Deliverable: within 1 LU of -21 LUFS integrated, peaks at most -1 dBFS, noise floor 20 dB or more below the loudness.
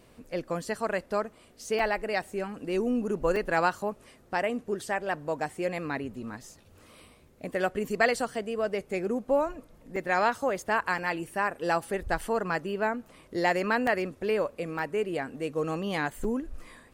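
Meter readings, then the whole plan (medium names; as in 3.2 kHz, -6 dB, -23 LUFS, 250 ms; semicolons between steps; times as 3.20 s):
dropouts 8; longest dropout 3.4 ms; loudness -30.0 LUFS; peak level -11.0 dBFS; loudness target -21.0 LUFS
-> interpolate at 1.79/3.36/9.96/10.98/12.21/13.87/14.79/16.24 s, 3.4 ms; trim +9 dB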